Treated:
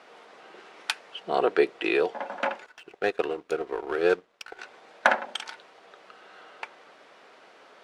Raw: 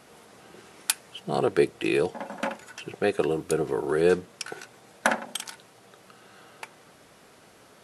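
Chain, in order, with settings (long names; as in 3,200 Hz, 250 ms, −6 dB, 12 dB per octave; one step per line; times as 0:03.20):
band-pass filter 440–3,600 Hz
0:02.66–0:04.59: power curve on the samples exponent 1.4
level +3.5 dB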